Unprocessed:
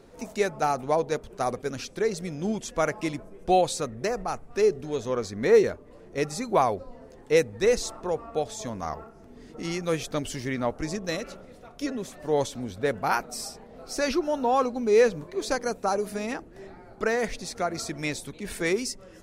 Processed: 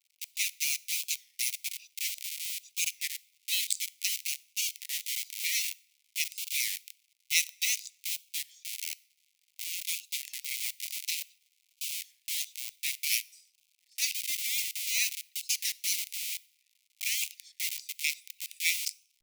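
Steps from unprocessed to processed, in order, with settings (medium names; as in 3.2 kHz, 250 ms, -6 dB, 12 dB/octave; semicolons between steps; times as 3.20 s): local Wiener filter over 41 samples; in parallel at -4 dB: Schmitt trigger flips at -34 dBFS; on the sum: expander -39 dBFS; tilt EQ +4 dB/octave; crackle 200 per s -50 dBFS; steep high-pass 2.1 kHz 96 dB/octave; on a send at -23.5 dB: treble shelf 3.9 kHz +6.5 dB + reverberation RT60 0.70 s, pre-delay 4 ms; on the sum: warped record 33 1/3 rpm, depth 160 cents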